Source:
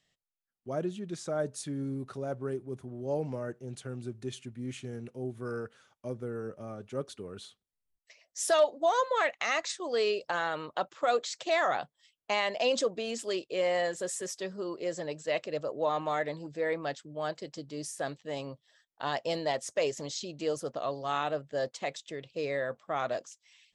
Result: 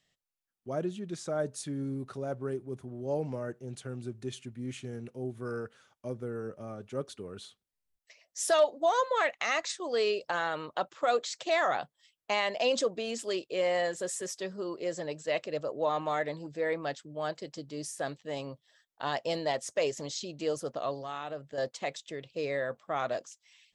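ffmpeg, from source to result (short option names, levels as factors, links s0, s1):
-filter_complex "[0:a]asettb=1/sr,asplit=3[s0][s1][s2];[s0]atrim=end=21.024[s3];[s1]atrim=start=21.02:end=21.58,asetpts=PTS-STARTPTS,afade=t=in:d=0.004:c=qsin,afade=t=out:st=0.556:d=0.004:c=qsin,acompressor=threshold=0.0112:ratio=2:attack=3.2:release=140:knee=1:detection=peak[s4];[s2]atrim=start=21.576[s5];[s3][s4]acrossfade=d=0.004:c1=hsin:c2=qsin[s6];[s6][s5]acrossfade=d=0.004:c1=qsin:c2=hsin"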